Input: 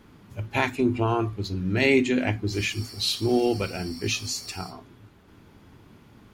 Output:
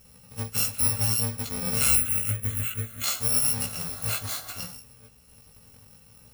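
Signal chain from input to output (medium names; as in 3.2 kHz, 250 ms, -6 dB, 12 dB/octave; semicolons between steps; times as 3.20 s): bit-reversed sample order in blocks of 128 samples; 1.95–3.04 s: static phaser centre 2.1 kHz, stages 4; chorus 0.6 Hz, delay 15.5 ms, depth 3.8 ms; trim +2 dB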